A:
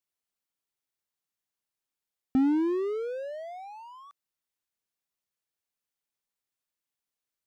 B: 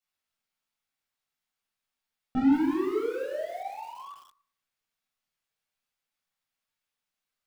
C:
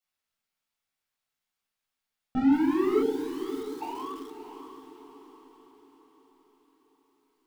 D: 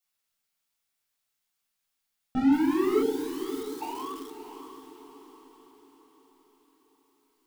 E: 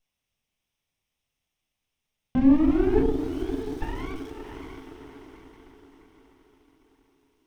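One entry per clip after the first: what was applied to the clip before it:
bell 2300 Hz +6.5 dB 2.9 oct; reverb RT60 0.60 s, pre-delay 8 ms, DRR -6 dB; lo-fi delay 0.175 s, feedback 35%, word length 6-bit, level -11 dB; gain -9 dB
spectral delete 3.03–3.81, 470–2900 Hz; vocal rider 0.5 s; diffused feedback echo 0.604 s, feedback 47%, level -10 dB; gain +3 dB
high shelf 4500 Hz +8.5 dB
minimum comb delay 0.35 ms; RIAA curve playback; mismatched tape noise reduction encoder only; gain -1.5 dB

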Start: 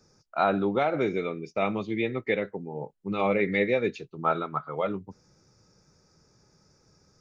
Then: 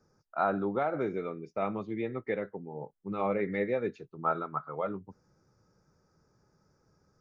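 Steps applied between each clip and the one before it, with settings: resonant high shelf 2000 Hz -8 dB, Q 1.5; gain -5.5 dB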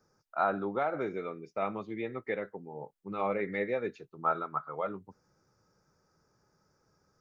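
low shelf 450 Hz -7 dB; gain +1.5 dB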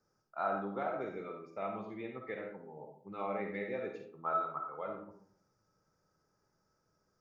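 reverb RT60 0.60 s, pre-delay 10 ms, DRR 2 dB; gain -8 dB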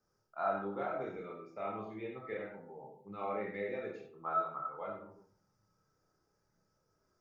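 chorus voices 4, 0.51 Hz, delay 29 ms, depth 1.5 ms; gain +2 dB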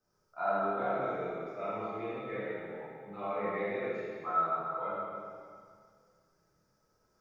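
plate-style reverb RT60 2 s, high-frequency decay 1×, DRR -6 dB; gain -2 dB

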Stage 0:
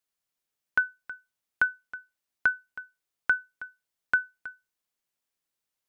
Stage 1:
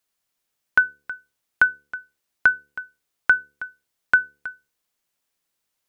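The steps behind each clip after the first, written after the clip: de-hum 72.3 Hz, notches 7; gain +7.5 dB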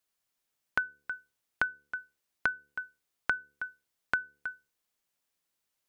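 compressor 4:1, threshold -23 dBFS, peak gain reduction 10 dB; gain -4.5 dB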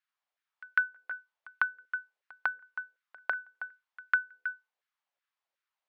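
LFO high-pass saw down 2.7 Hz 550–1700 Hz; LPF 3500 Hz 12 dB/oct; reverse echo 0.15 s -23 dB; gain -4 dB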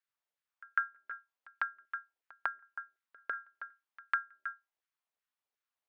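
ring modulator 120 Hz; gain -2 dB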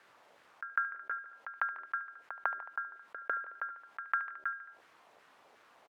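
band-pass 560 Hz, Q 0.67; feedback echo 73 ms, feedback 41%, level -21.5 dB; fast leveller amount 50%; gain +3.5 dB

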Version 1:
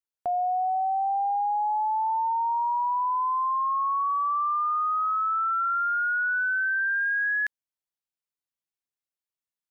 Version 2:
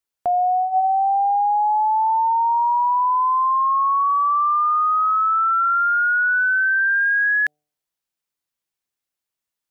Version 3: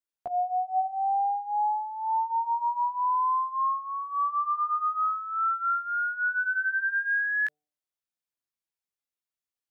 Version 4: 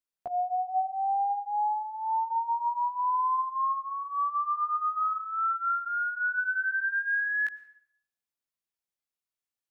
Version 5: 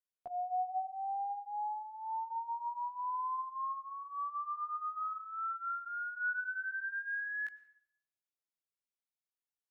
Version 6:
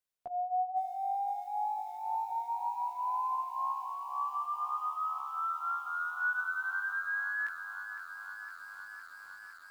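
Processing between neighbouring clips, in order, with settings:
de-hum 149.2 Hz, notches 5; gain +7.5 dB
chorus 0.49 Hz, delay 15.5 ms, depth 3.5 ms; gain -6.5 dB
plate-style reverb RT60 0.66 s, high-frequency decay 0.9×, pre-delay 90 ms, DRR 17 dB; gain -1.5 dB
resonator 730 Hz, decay 0.2 s, harmonics all, mix 50%; gain -4 dB
lo-fi delay 0.51 s, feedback 80%, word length 10-bit, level -10.5 dB; gain +3 dB

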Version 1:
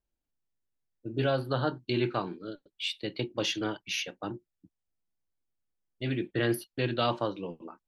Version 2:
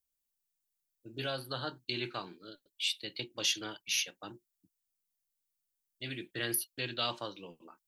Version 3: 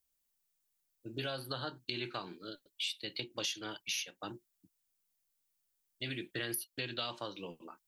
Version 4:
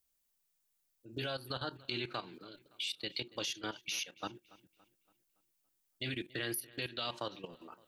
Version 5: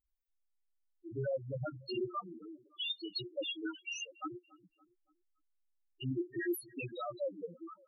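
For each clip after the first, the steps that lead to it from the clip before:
pre-emphasis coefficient 0.9; gain +7.5 dB
compressor 4:1, threshold -40 dBFS, peak gain reduction 12 dB; gain +4 dB
level quantiser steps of 14 dB; darkening echo 0.283 s, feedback 46%, low-pass 4400 Hz, level -20.5 dB; gain +4.5 dB
loudest bins only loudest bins 2; gain +9.5 dB

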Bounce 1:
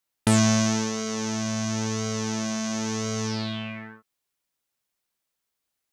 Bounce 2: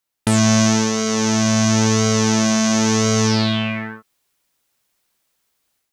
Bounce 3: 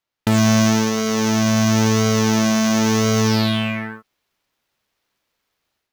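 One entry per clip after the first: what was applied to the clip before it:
AGC gain up to 10 dB; gain +2 dB
median filter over 5 samples

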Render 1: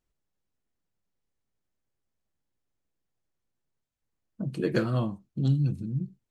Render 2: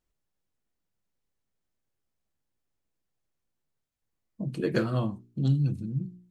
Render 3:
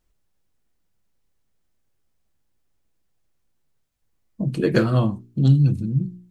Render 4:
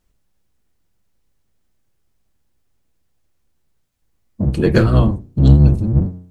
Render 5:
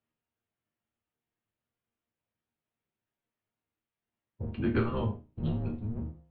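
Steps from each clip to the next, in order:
spectral repair 4.25–4.45, 1100–3500 Hz before; de-hum 59.73 Hz, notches 7
low shelf 85 Hz +6 dB; gain +7.5 dB
octaver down 1 oct, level 0 dB; in parallel at -6 dB: sine folder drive 3 dB, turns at -2 dBFS; on the sum: gain -2 dB
mistuned SSB -110 Hz 200–3400 Hz; resonator bank D#2 sus4, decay 0.25 s; gain -1.5 dB

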